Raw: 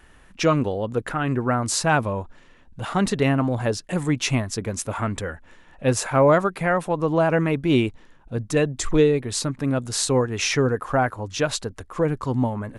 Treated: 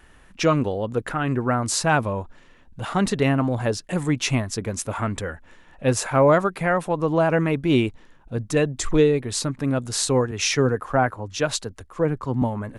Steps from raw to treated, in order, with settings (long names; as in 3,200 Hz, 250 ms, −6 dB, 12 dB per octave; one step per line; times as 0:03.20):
0:10.31–0:12.42: multiband upward and downward expander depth 40%